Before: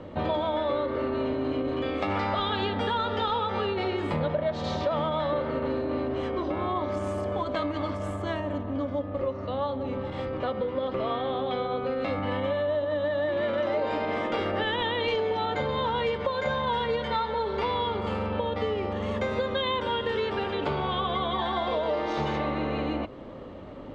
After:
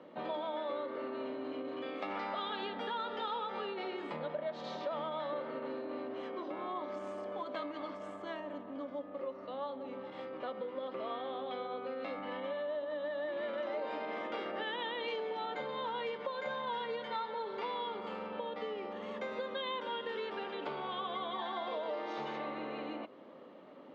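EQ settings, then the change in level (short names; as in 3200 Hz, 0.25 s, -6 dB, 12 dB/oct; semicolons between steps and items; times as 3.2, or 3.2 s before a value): HPF 180 Hz 24 dB/oct; Bessel low-pass 5100 Hz, order 2; low shelf 310 Hz -6.5 dB; -9.0 dB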